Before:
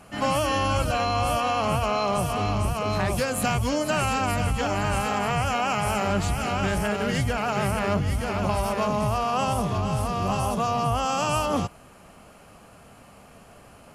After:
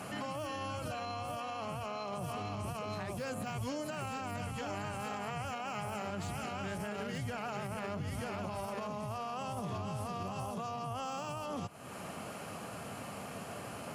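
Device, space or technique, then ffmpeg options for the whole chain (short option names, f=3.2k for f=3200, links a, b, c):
podcast mastering chain: -af "highpass=f=93:w=0.5412,highpass=f=93:w=1.3066,deesser=0.75,acompressor=threshold=-41dB:ratio=3,alimiter=level_in=12.5dB:limit=-24dB:level=0:latency=1:release=109,volume=-12.5dB,volume=6.5dB" -ar 44100 -c:a libmp3lame -b:a 112k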